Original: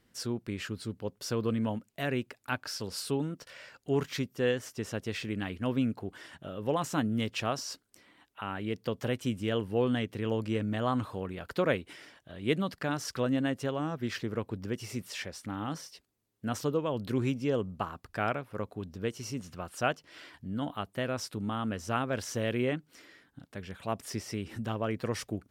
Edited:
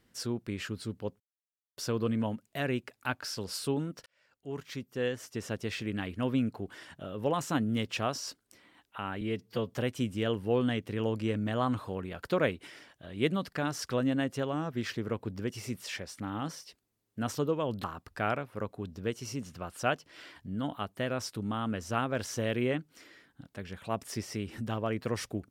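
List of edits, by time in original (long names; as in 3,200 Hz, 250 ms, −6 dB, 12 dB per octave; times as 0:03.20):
0:01.20: splice in silence 0.57 s
0:03.49–0:04.96: fade in
0:08.64–0:08.98: time-stretch 1.5×
0:17.10–0:17.82: remove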